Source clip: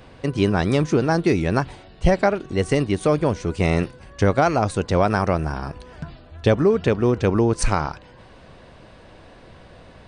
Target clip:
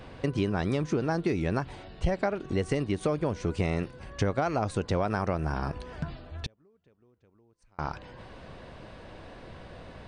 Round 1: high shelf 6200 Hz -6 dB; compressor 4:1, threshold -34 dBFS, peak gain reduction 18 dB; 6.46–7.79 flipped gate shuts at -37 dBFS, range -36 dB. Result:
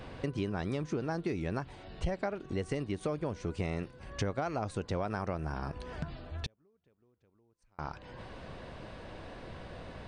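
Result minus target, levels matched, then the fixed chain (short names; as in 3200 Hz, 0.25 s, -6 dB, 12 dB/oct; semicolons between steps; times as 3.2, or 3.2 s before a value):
compressor: peak gain reduction +6.5 dB
high shelf 6200 Hz -6 dB; compressor 4:1, threshold -25.5 dBFS, peak gain reduction 11.5 dB; 6.46–7.79 flipped gate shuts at -37 dBFS, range -36 dB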